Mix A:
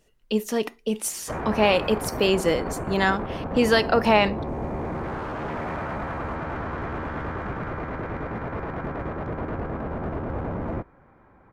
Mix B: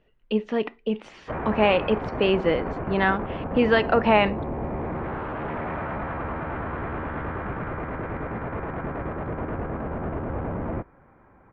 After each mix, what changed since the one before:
master: add LPF 3000 Hz 24 dB/oct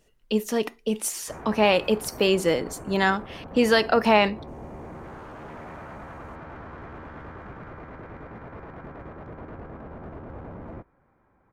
background -10.0 dB; master: remove LPF 3000 Hz 24 dB/oct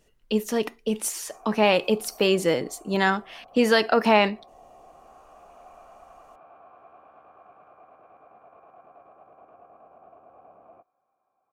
background: add vowel filter a

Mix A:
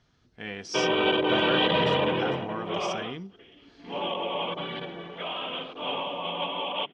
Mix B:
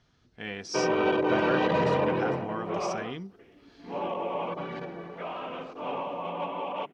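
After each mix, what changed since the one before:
background: remove synth low-pass 3300 Hz, resonance Q 10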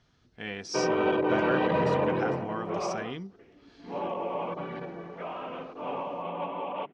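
background: add air absorption 210 m

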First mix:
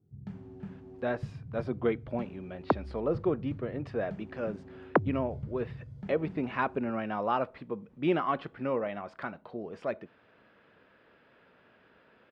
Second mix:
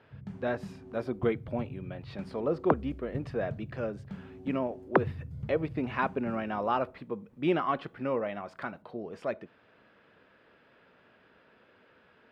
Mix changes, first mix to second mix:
speech: entry -0.60 s; master: remove air absorption 55 m

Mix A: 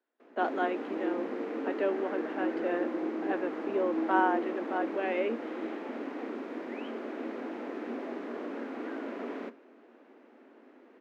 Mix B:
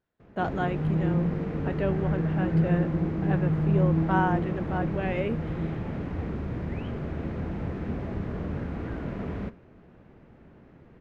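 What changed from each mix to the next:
speech: remove air absorption 89 m; master: remove steep high-pass 240 Hz 72 dB/oct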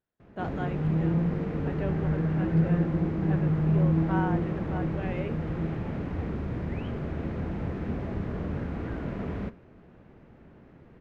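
speech -6.5 dB

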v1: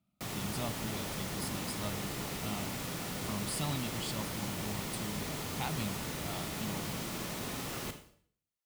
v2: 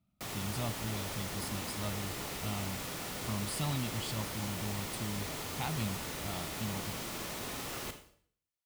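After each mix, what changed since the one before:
speech: add tone controls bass +9 dB, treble -2 dB; master: add bell 170 Hz -6 dB 1.5 oct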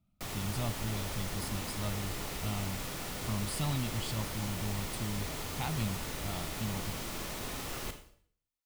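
master: remove HPF 100 Hz 6 dB/oct

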